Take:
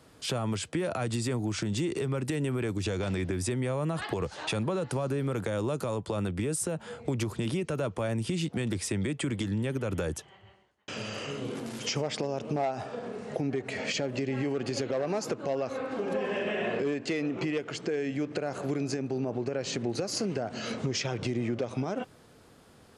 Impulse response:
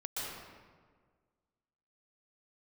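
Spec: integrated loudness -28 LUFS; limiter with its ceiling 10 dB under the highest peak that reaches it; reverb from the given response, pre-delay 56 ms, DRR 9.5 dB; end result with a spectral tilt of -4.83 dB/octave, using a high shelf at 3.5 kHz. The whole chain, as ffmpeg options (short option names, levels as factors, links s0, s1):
-filter_complex "[0:a]highshelf=f=3500:g=4.5,alimiter=level_in=1.26:limit=0.0631:level=0:latency=1,volume=0.794,asplit=2[s0][s1];[1:a]atrim=start_sample=2205,adelay=56[s2];[s1][s2]afir=irnorm=-1:irlink=0,volume=0.251[s3];[s0][s3]amix=inputs=2:normalize=0,volume=2.11"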